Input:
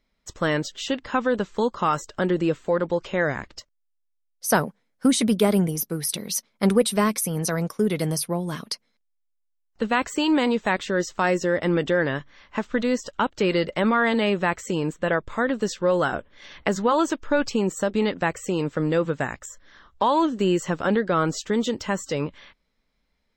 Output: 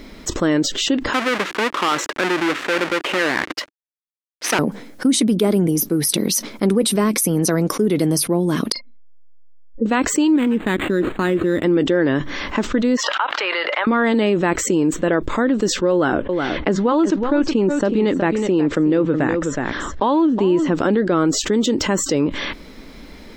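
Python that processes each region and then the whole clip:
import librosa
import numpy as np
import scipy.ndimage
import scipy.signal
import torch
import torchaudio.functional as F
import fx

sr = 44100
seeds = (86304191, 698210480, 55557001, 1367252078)

y = fx.chain(x, sr, fx.halfwave_hold(),
    fx.bandpass_q(hz=1900.0, q=1.1), at=(1.13, 4.59))
y = fx.chain(y, sr, fx.spec_expand(power=3.0),
    fx.air_absorb(metres=460.0),
    fx.doubler(ms=37.0, db=-9.5), at=(8.72, 9.86))
y = fx.chain(y, sr, fx.law_mismatch(coded='A'),
    fx.peak_eq(hz=690.0, db=-12.0, octaves=1.3),
    fx.resample_linear(factor=8), at=(10.36, 11.64))
y = fx.chain(y, sr, fx.highpass(hz=870.0, slope=24),
    fx.air_absorb(metres=350.0),
    fx.pre_swell(db_per_s=78.0), at=(12.97, 13.87))
y = fx.chain(y, sr, fx.lowpass(hz=4300.0, slope=12),
    fx.echo_single(ms=369, db=-13.0), at=(15.92, 20.75))
y = fx.peak_eq(y, sr, hz=310.0, db=12.0, octaves=0.92)
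y = fx.env_flatten(y, sr, amount_pct=70)
y = F.gain(torch.from_numpy(y), -8.0).numpy()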